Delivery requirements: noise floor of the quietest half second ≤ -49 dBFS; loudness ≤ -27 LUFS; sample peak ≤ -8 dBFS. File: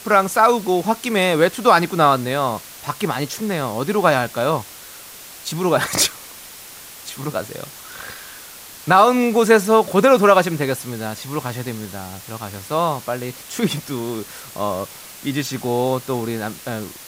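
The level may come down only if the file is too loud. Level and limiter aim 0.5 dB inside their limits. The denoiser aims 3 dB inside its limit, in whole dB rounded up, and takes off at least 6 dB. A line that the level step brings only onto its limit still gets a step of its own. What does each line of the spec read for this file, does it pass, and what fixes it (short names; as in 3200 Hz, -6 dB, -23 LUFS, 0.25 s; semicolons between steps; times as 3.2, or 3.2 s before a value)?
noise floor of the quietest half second -39 dBFS: fail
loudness -19.0 LUFS: fail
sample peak -1.5 dBFS: fail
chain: denoiser 6 dB, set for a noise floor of -39 dBFS; gain -8.5 dB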